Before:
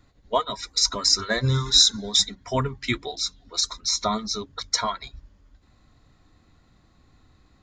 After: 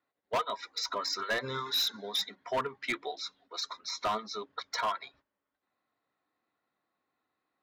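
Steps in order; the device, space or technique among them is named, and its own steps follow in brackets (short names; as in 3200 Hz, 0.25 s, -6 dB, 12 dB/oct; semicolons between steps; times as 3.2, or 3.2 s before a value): walkie-talkie (BPF 460–2600 Hz; hard clip -24 dBFS, distortion -9 dB; gate -59 dBFS, range -14 dB); gain -1.5 dB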